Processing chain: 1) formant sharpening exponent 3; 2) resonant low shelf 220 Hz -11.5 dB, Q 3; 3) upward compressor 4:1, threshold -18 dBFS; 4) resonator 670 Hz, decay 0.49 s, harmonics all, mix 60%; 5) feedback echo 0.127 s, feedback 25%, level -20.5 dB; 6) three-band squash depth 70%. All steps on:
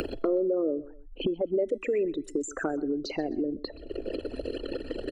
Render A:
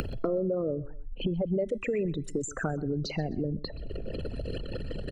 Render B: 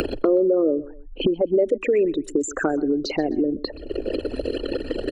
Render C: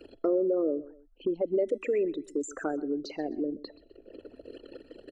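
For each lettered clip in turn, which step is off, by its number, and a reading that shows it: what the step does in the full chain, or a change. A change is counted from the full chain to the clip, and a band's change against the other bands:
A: 2, 125 Hz band +13.5 dB; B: 4, loudness change +8.0 LU; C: 3, crest factor change -2.5 dB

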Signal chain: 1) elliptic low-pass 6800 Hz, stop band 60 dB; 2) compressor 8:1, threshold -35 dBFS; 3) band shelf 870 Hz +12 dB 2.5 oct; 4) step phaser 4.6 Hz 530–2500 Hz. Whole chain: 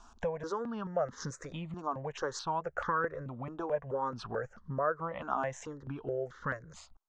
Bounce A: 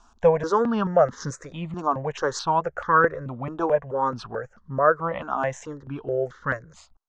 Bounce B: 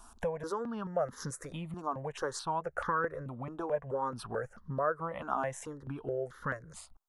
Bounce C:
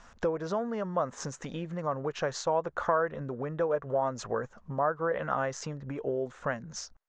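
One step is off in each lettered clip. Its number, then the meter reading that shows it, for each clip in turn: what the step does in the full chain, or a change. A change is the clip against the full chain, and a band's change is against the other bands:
2, momentary loudness spread change +5 LU; 1, 8 kHz band +2.5 dB; 4, 8 kHz band +2.5 dB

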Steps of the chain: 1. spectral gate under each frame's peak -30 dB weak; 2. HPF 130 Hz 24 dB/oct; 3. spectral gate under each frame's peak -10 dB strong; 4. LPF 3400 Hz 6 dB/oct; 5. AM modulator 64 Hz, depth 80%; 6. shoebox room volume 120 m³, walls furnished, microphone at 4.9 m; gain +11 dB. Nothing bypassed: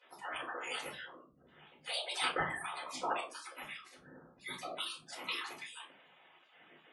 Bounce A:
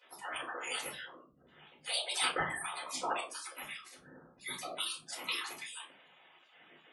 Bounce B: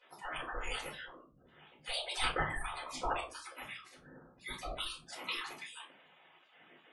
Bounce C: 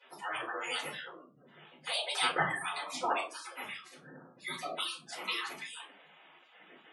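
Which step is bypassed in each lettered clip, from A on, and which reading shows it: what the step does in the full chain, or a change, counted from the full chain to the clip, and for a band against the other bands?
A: 4, 8 kHz band +8.0 dB; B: 2, 125 Hz band +6.0 dB; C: 5, loudness change +4.0 LU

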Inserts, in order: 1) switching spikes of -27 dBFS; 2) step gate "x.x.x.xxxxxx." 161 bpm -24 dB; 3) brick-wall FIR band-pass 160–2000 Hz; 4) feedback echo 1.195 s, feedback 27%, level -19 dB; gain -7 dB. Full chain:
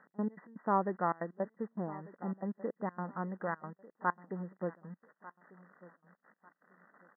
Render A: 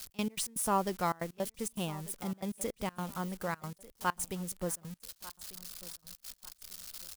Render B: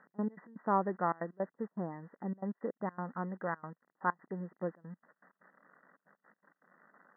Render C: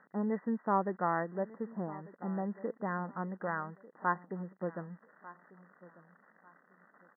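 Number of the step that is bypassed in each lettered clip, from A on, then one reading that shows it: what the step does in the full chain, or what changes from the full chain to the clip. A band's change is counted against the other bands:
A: 3, 125 Hz band +2.0 dB; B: 4, momentary loudness spread change -9 LU; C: 2, 2 kHz band +1.5 dB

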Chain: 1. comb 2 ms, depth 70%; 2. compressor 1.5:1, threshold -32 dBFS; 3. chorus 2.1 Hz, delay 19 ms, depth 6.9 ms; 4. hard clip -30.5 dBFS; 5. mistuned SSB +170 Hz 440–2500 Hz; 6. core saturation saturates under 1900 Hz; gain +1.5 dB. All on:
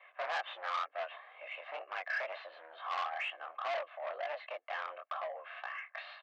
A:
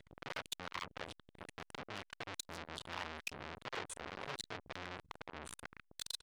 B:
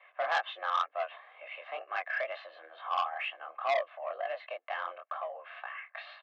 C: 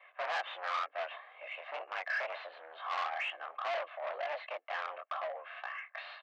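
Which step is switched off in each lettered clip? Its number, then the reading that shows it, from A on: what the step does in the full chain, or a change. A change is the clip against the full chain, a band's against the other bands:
5, 4 kHz band +10.0 dB; 4, distortion -8 dB; 2, mean gain reduction 3.0 dB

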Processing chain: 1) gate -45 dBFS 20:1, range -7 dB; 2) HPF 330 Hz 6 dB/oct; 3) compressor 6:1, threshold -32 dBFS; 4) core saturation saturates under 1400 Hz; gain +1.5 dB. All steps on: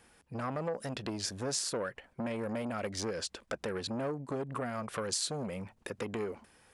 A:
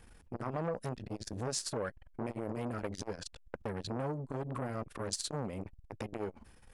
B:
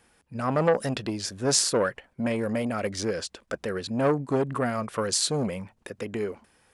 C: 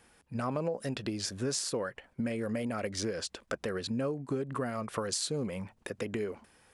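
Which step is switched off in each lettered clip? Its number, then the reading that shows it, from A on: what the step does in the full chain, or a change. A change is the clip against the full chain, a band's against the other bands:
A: 2, loudness change -3.0 LU; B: 3, crest factor change +3.0 dB; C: 4, crest factor change -2.0 dB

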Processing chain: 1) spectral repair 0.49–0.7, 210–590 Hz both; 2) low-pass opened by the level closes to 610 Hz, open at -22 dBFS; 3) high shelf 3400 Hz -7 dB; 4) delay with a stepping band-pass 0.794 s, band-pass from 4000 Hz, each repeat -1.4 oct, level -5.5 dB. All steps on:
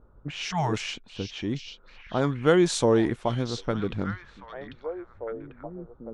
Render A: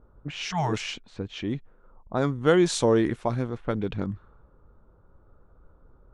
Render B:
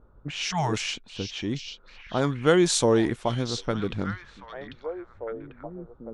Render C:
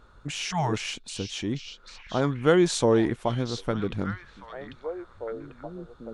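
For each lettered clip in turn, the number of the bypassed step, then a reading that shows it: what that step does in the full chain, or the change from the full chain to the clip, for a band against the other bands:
4, echo-to-direct -10.0 dB to none; 3, 8 kHz band +5.5 dB; 2, 8 kHz band +1.5 dB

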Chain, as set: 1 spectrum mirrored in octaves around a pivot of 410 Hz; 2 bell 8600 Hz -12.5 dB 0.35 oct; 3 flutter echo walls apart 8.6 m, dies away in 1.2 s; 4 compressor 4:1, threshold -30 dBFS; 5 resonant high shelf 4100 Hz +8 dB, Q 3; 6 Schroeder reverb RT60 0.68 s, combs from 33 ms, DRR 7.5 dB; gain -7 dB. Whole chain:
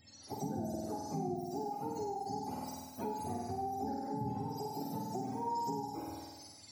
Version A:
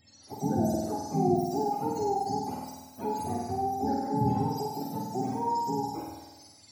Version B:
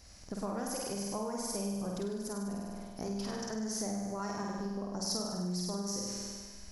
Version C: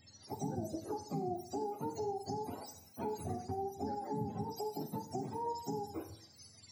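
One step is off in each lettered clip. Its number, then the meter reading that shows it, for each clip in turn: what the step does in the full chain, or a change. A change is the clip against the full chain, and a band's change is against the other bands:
4, mean gain reduction 6.5 dB; 1, 1 kHz band -13.5 dB; 3, momentary loudness spread change +2 LU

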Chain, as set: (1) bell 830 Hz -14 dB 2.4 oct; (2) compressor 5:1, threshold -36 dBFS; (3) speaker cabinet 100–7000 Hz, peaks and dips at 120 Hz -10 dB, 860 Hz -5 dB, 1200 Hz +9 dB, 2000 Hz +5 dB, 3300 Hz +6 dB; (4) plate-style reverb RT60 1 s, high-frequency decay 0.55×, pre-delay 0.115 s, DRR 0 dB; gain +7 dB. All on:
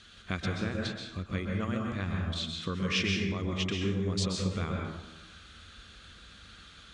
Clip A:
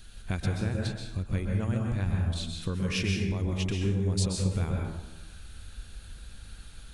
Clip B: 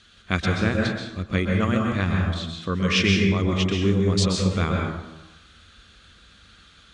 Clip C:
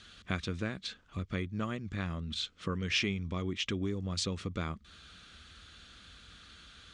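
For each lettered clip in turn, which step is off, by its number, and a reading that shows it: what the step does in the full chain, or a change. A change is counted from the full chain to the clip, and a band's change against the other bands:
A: 3, 125 Hz band +7.0 dB; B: 2, momentary loudness spread change -12 LU; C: 4, crest factor change +3.0 dB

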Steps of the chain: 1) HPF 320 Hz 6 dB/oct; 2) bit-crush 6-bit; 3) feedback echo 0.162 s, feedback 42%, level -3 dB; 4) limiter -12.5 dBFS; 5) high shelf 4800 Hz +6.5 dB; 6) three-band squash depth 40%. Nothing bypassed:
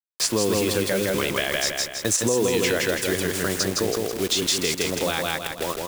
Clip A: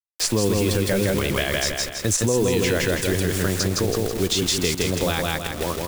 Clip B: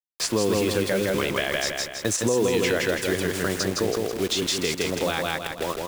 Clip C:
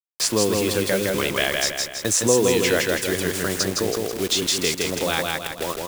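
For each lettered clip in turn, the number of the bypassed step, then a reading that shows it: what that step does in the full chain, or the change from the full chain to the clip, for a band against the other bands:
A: 1, 125 Hz band +8.0 dB; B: 5, 8 kHz band -4.5 dB; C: 4, crest factor change +5.0 dB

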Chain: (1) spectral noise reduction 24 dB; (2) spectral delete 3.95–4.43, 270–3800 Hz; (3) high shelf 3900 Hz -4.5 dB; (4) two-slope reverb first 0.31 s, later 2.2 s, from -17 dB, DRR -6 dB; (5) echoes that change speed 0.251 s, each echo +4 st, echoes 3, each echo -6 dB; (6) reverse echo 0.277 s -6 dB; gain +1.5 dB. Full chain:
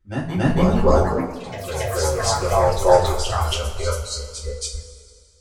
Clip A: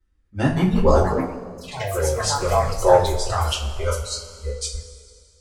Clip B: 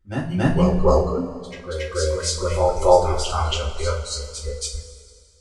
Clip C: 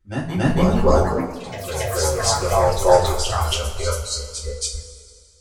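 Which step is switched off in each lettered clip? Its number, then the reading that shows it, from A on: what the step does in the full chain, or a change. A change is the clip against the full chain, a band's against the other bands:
6, momentary loudness spread change +1 LU; 5, 2 kHz band -2.0 dB; 3, 8 kHz band +3.5 dB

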